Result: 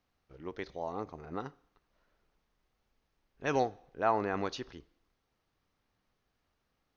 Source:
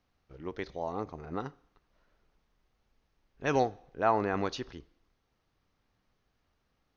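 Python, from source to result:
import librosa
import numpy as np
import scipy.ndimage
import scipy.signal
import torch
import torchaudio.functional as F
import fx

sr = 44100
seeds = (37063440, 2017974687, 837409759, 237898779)

y = fx.low_shelf(x, sr, hz=180.0, db=-3.5)
y = y * 10.0 ** (-2.0 / 20.0)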